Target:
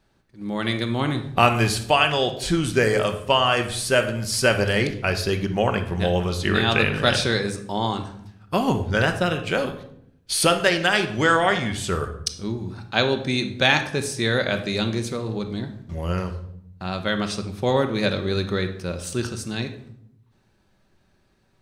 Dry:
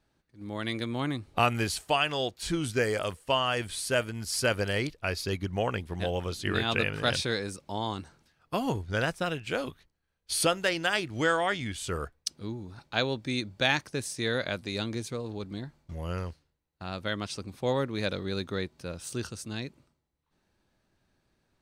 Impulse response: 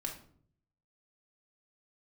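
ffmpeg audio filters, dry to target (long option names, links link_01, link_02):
-filter_complex "[0:a]asplit=2[link_01][link_02];[1:a]atrim=start_sample=2205,asetrate=29547,aresample=44100,highshelf=frequency=9100:gain=-7.5[link_03];[link_02][link_03]afir=irnorm=-1:irlink=0,volume=-1.5dB[link_04];[link_01][link_04]amix=inputs=2:normalize=0,volume=2.5dB"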